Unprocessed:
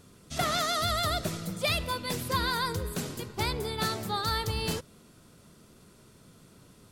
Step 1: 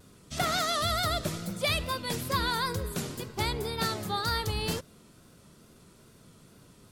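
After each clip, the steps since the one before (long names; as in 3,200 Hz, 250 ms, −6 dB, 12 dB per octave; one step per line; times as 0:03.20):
tape wow and flutter 70 cents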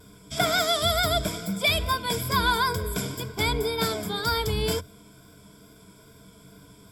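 EQ curve with evenly spaced ripples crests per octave 1.7, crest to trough 14 dB
level +2.5 dB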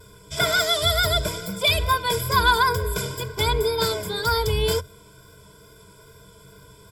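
comb filter 2 ms, depth 95%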